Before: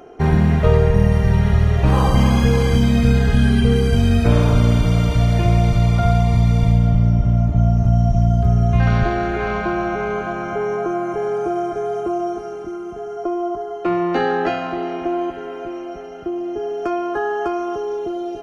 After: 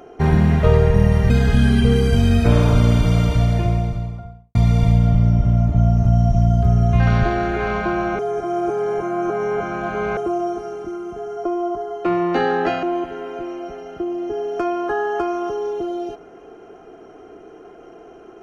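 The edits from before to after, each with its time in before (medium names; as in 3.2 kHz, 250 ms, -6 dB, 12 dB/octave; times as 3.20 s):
1.30–3.10 s: delete
4.96–6.35 s: studio fade out
9.99–11.97 s: reverse
14.63–15.09 s: delete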